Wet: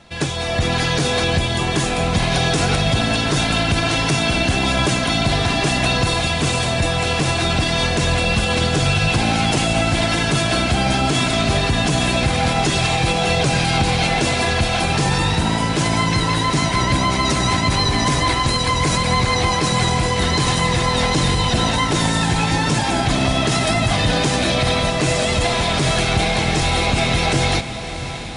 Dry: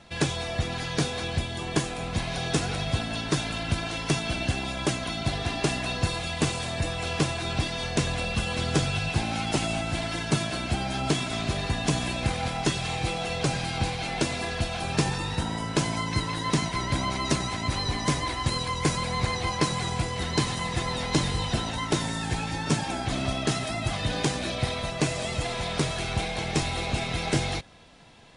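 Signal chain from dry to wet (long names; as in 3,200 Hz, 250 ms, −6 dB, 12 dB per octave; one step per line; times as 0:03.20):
automatic gain control gain up to 11 dB
brickwall limiter −13 dBFS, peak gain reduction 11 dB
on a send: feedback delay with all-pass diffusion 637 ms, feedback 72%, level −13 dB
on the sum: level +4.5 dB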